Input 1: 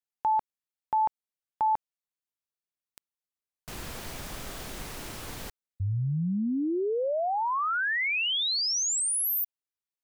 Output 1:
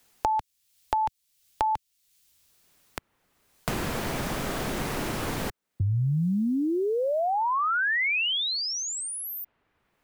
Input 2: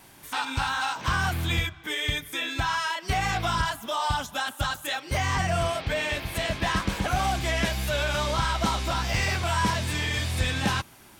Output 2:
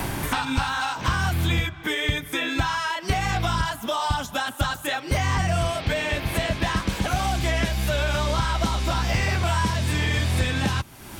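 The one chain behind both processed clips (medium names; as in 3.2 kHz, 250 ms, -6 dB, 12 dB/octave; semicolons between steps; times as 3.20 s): bass shelf 410 Hz +4.5 dB; three bands compressed up and down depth 100%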